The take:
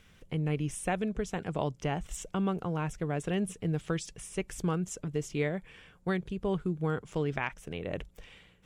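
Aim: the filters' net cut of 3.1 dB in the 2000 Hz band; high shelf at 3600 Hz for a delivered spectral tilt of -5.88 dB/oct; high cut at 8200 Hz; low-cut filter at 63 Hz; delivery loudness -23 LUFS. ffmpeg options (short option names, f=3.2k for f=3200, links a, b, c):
-af "highpass=63,lowpass=8.2k,equalizer=f=2k:t=o:g=-5.5,highshelf=f=3.6k:g=5.5,volume=11dB"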